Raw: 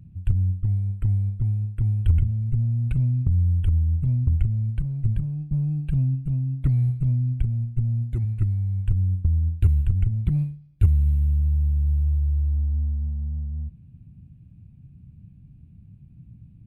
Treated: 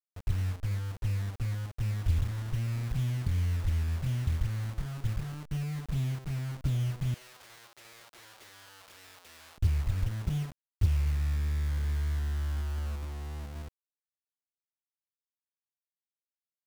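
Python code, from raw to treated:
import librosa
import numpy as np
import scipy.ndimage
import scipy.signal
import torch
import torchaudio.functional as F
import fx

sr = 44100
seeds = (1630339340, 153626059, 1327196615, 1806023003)

y = fx.delta_hold(x, sr, step_db=-29.5)
y = fx.highpass(y, sr, hz=440.0, slope=24, at=(7.14, 9.58))
y = np.sign(y) * np.maximum(np.abs(y) - 10.0 ** (-45.0 / 20.0), 0.0)
y = F.gain(torch.from_numpy(y), -8.0).numpy()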